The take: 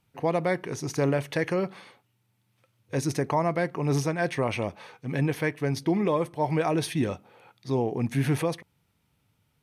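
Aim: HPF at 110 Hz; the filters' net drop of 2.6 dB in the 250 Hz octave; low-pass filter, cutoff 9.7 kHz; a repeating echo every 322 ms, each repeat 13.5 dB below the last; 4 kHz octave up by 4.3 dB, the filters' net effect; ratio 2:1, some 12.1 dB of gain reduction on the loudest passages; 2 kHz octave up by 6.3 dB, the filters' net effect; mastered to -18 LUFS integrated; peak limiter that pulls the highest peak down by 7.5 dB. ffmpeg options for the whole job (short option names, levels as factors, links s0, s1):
-af "highpass=110,lowpass=9700,equalizer=f=250:t=o:g=-3.5,equalizer=f=2000:t=o:g=7,equalizer=f=4000:t=o:g=3.5,acompressor=threshold=0.00708:ratio=2,alimiter=level_in=1.41:limit=0.0631:level=0:latency=1,volume=0.708,aecho=1:1:322|644:0.211|0.0444,volume=12.6"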